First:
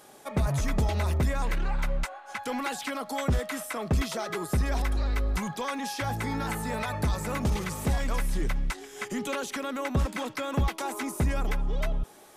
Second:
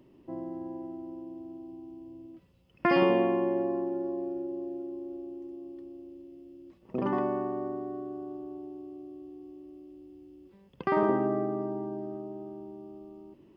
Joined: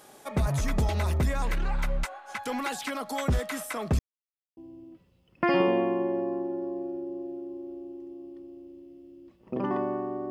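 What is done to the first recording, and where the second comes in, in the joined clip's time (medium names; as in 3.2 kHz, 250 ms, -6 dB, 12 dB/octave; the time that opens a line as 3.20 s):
first
3.99–4.57 s: mute
4.57 s: go over to second from 1.99 s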